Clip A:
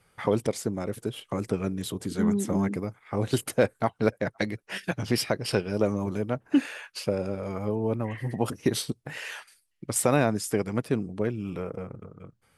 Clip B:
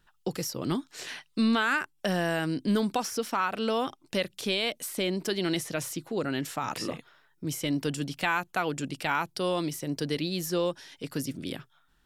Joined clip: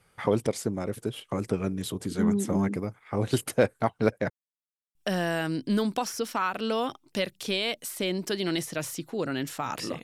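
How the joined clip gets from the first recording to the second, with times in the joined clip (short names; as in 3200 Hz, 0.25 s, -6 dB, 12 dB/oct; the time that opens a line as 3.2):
clip A
4.3–4.95 mute
4.95 switch to clip B from 1.93 s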